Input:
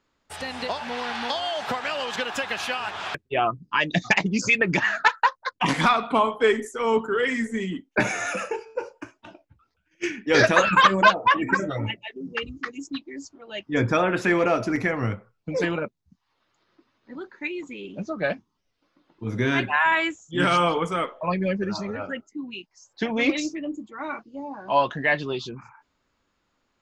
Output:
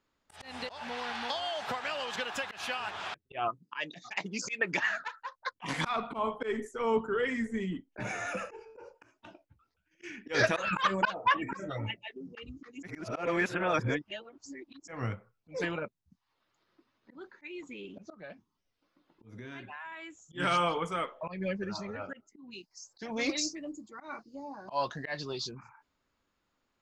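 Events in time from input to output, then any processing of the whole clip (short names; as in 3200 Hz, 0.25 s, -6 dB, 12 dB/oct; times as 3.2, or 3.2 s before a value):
3.48–4.91 Bessel high-pass 290 Hz
5.96–8.95 tilt -2 dB/oct
12.83–14.88 reverse
18.14–20.25 compressor 3:1, threshold -40 dBFS
22.51–25.53 resonant high shelf 3800 Hz +6.5 dB, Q 3
whole clip: dynamic EQ 270 Hz, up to -4 dB, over -36 dBFS, Q 0.87; auto swell 0.138 s; gain -6.5 dB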